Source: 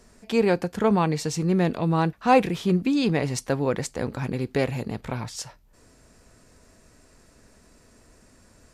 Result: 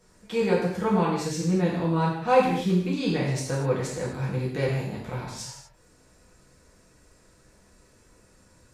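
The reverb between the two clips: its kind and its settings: gated-style reverb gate 280 ms falling, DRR -6.5 dB; trim -9.5 dB

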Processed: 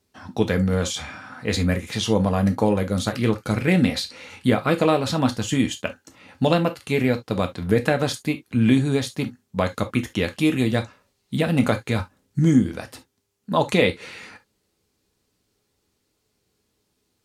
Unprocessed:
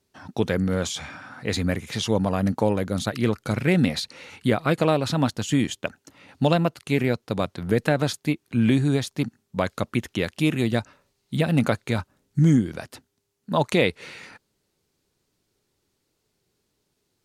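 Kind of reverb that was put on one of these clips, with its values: gated-style reverb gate 90 ms falling, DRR 5.5 dB; trim +1 dB

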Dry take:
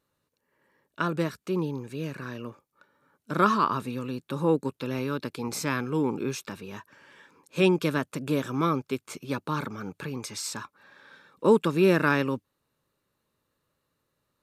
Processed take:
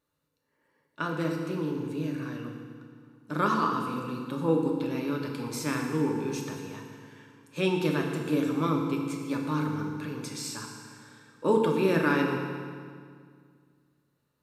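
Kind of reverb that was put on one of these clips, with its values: FDN reverb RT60 2 s, low-frequency decay 1.3×, high-frequency decay 0.85×, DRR 0.5 dB; trim -5 dB

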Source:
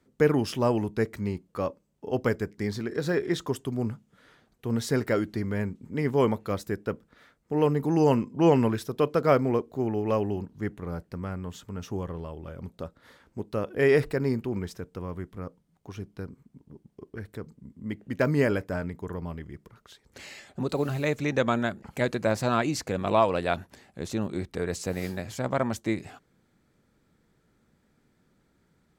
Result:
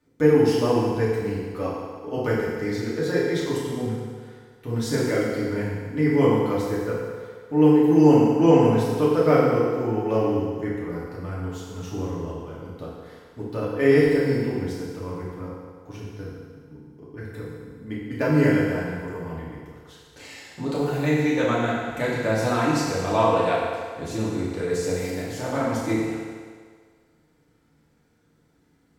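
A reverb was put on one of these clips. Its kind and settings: FDN reverb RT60 1.8 s, low-frequency decay 0.75×, high-frequency decay 0.9×, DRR -7.5 dB; trim -4.5 dB

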